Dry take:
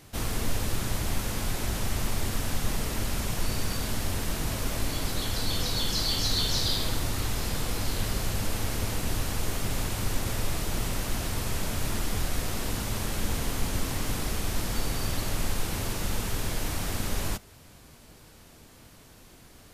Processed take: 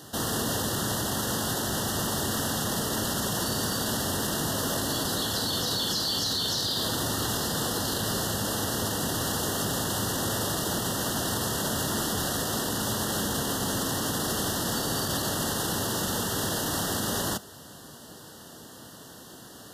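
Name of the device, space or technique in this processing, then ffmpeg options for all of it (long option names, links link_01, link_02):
PA system with an anti-feedback notch: -af "highpass=150,asuperstop=centerf=2300:order=12:qfactor=2.6,alimiter=level_in=3.5dB:limit=-24dB:level=0:latency=1:release=22,volume=-3.5dB,volume=8dB"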